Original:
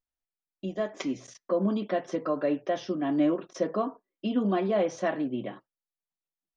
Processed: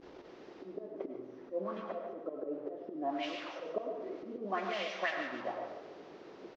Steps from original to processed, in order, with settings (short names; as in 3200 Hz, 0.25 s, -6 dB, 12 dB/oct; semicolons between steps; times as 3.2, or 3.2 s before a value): delta modulation 32 kbps, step -36.5 dBFS; 0.65–3.23 high shelf 2500 Hz -10.5 dB; auto swell 0.29 s; auto-wah 300–2800 Hz, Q 2.8, up, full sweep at -22.5 dBFS; feedback echo 0.145 s, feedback 40%, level -11 dB; digital reverb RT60 0.76 s, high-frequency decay 0.75×, pre-delay 60 ms, DRR 6 dB; gain +6.5 dB